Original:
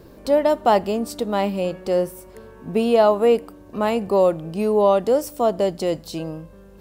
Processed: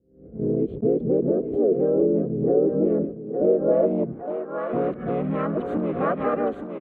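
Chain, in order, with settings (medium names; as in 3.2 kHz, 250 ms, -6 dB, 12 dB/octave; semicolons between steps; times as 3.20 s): reverse the whole clip; gate -34 dBFS, range -41 dB; harmony voices -4 st -1 dB, -3 st -16 dB, +5 st 0 dB; static phaser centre 2.2 kHz, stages 4; compression 4:1, threshold -27 dBFS, peak gain reduction 14 dB; waveshaping leveller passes 1; high-pass 68 Hz; thinning echo 864 ms, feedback 34%, high-pass 410 Hz, level -4 dB; low-pass sweep 430 Hz -> 1.2 kHz, 3.26–4.73 s; delay 930 ms -21.5 dB; swell ahead of each attack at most 110 dB/s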